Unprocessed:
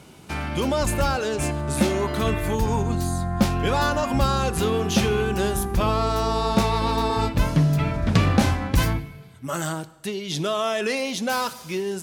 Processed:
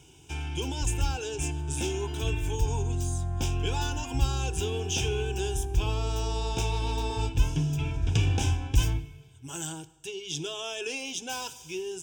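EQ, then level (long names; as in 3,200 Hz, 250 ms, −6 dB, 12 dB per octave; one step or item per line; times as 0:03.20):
phaser with its sweep stopped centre 500 Hz, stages 4
phaser with its sweep stopped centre 2,900 Hz, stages 8
0.0 dB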